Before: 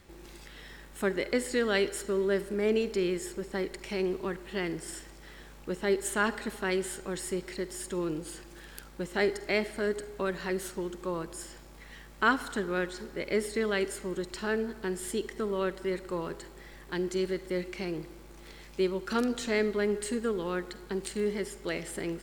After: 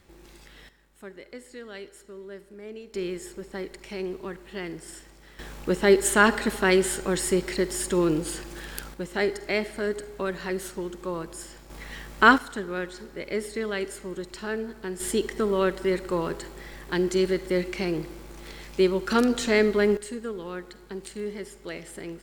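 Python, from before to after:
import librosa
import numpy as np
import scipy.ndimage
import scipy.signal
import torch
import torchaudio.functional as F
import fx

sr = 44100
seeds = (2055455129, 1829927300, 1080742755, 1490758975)

y = fx.gain(x, sr, db=fx.steps((0.0, -1.5), (0.69, -13.5), (2.94, -2.0), (5.39, 9.5), (8.94, 2.0), (11.7, 9.0), (12.38, -0.5), (15.0, 7.0), (19.97, -3.0)))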